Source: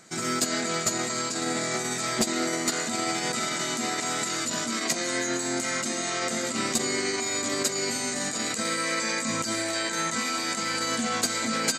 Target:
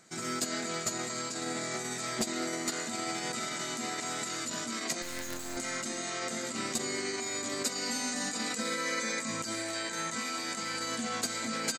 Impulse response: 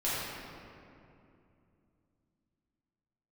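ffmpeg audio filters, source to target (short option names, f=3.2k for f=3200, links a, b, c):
-filter_complex "[0:a]asettb=1/sr,asplit=3[a][b][c];[a]atrim=end=5.024[d];[b]atrim=start=5.02:end=5.57,asetpts=PTS-STARTPTS,afade=t=in:d=0.004:c=qsin,afade=t=out:st=0.546:d=0.004:c=qsin,acrusher=bits=4:dc=4:mix=0:aa=0.000001[e];[c]atrim=start=5.566[f];[d][e]acrossfade=d=0.004:c1=hsin:c2=qsin[g];[g][f]acrossfade=d=0.004:c1=qsin:c2=hsin,asettb=1/sr,asplit=3[h][i][j];[h]atrim=end=7.654[k];[i]atrim=start=7.65:end=9.2,asetpts=PTS-STARTPTS,afade=t=in:d=0.004:c=qsin,afade=t=out:st=1.546:d=0.004:c=qsin,aecho=1:1:4:0.73,atrim=end_sample=68355[l];[j]atrim=start=9.196[m];[k][l]acrossfade=d=0.004:c1=hsin:c2=qsin[n];[n][m]acrossfade=d=0.004:c1=qsin:c2=hsin,aecho=1:1:209|418|627:0.0891|0.0357|0.0143,volume=-7dB"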